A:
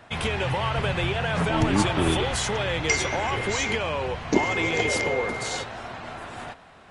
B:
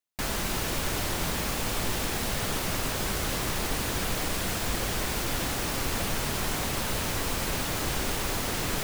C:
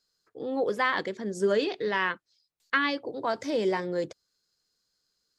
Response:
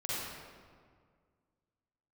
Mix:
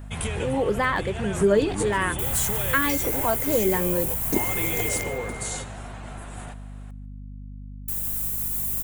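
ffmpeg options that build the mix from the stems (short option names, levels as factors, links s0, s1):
-filter_complex "[0:a]volume=0.501,asplit=2[s0][s1];[s1]volume=0.0891[s2];[1:a]highshelf=f=8100:g=11.5,alimiter=limit=0.141:level=0:latency=1:release=85,adelay=2000,volume=0.141,asplit=3[s3][s4][s5];[s3]atrim=end=4.89,asetpts=PTS-STARTPTS,afade=t=out:st=4.886:d=0.004:c=hsin[s6];[s4]atrim=start=4.89:end=7.88,asetpts=PTS-STARTPTS,volume=0[s7];[s5]atrim=start=7.88,asetpts=PTS-STARTPTS,afade=t=in:d=0.004:c=hsin[s8];[s6][s7][s8]concat=n=3:v=0:a=1,asplit=2[s9][s10];[s10]volume=0.355[s11];[2:a]highshelf=f=3500:g=-9.5,aphaser=in_gain=1:out_gain=1:delay=2.3:decay=0.24:speed=1.3:type=triangular,volume=1.41,asplit=2[s12][s13];[s13]apad=whole_len=304588[s14];[s0][s14]sidechaincompress=threshold=0.0355:ratio=8:attack=42:release=421[s15];[s2][s11]amix=inputs=2:normalize=0,aecho=0:1:146|292|438|584:1|0.31|0.0961|0.0298[s16];[s15][s9][s12][s16]amix=inputs=4:normalize=0,lowshelf=f=200:g=7.5,aexciter=amount=4.8:drive=7.3:freq=7100,aeval=exprs='val(0)+0.0141*(sin(2*PI*50*n/s)+sin(2*PI*2*50*n/s)/2+sin(2*PI*3*50*n/s)/3+sin(2*PI*4*50*n/s)/4+sin(2*PI*5*50*n/s)/5)':c=same"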